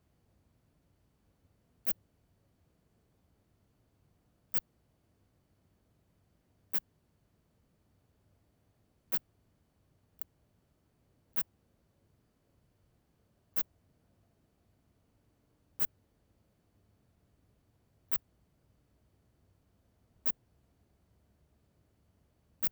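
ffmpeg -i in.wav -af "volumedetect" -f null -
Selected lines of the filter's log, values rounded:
mean_volume: -45.3 dB
max_volume: -14.6 dB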